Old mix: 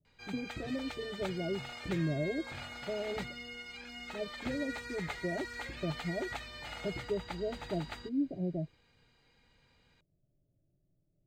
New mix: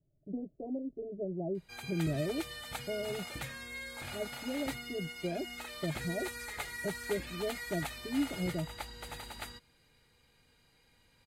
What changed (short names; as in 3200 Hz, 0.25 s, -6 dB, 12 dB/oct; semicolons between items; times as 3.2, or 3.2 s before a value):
background: entry +1.50 s; master: remove running mean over 4 samples